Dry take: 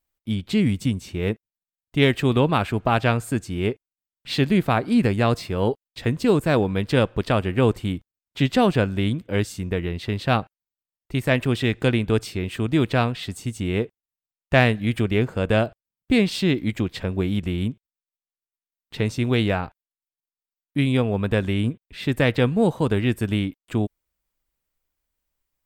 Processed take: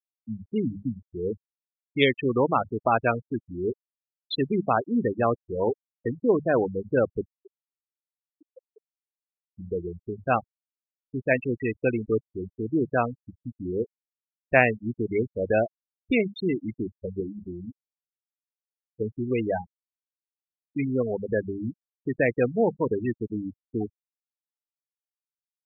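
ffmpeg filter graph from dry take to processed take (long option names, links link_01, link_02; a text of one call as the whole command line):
ffmpeg -i in.wav -filter_complex "[0:a]asettb=1/sr,asplit=3[link_01][link_02][link_03];[link_01]atrim=end=7.234[link_04];[link_02]atrim=start=7.23:end=9.47,asetpts=PTS-STARTPTS,afade=type=in:duration=0.004:curve=qsin,afade=type=out:start_time=2.236:duration=0.004:curve=qsin,highpass=340,lowpass=7500,acompressor=threshold=-33dB:ratio=12:attack=3.2:release=140:knee=1:detection=peak[link_05];[link_03]atrim=start=9.466[link_06];[link_04][link_05]acrossfade=duration=0.004:curve1=hsin:curve2=qsin[link_07];[link_07][link_06]acrossfade=duration=0.004:curve1=qsin:curve2=hsin,asettb=1/sr,asplit=3[link_08][link_09][link_10];[link_08]atrim=end=17.204[link_11];[link_09]atrim=start=17.2:end=19.01,asetpts=PTS-STARTPTS,afade=type=in:duration=0.004:curve=qsin,afade=type=out:start_time=1.806:duration=0.004:curve=qsin,lowshelf=frequency=220:gain=-3.5,aeval=exprs='(tanh(8.91*val(0)+0.15)-tanh(0.15))/8.91':channel_layout=same[link_12];[link_10]atrim=start=19.006[link_13];[link_11][link_12]acrossfade=duration=0.004:curve1=hsin:curve2=qsin[link_14];[link_14][link_13]acrossfade=duration=0.004:curve1=qsin:curve2=hsin,bandreject=frequency=50:width_type=h:width=6,bandreject=frequency=100:width_type=h:width=6,bandreject=frequency=150:width_type=h:width=6,bandreject=frequency=200:width_type=h:width=6,afftfilt=real='re*gte(hypot(re,im),0.178)':imag='im*gte(hypot(re,im),0.178)':win_size=1024:overlap=0.75,bass=frequency=250:gain=-11,treble=frequency=4000:gain=12" out.wav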